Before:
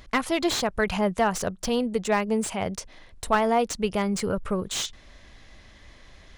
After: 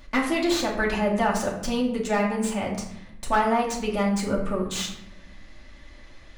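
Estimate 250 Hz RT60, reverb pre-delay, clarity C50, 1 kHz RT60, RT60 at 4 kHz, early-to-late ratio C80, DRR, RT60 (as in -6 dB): 1.4 s, 3 ms, 6.5 dB, 0.75 s, 0.50 s, 8.5 dB, -4.0 dB, 0.85 s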